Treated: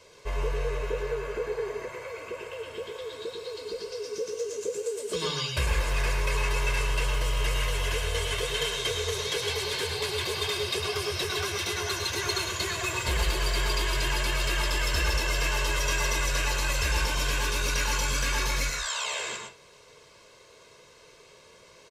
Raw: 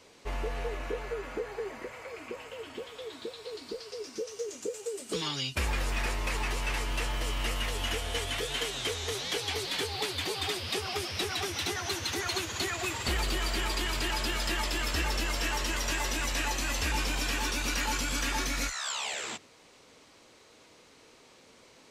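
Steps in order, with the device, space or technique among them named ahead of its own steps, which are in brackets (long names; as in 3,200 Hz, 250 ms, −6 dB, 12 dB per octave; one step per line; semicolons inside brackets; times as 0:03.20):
microphone above a desk (comb filter 1.9 ms, depth 67%; convolution reverb RT60 0.30 s, pre-delay 99 ms, DRR 2.5 dB)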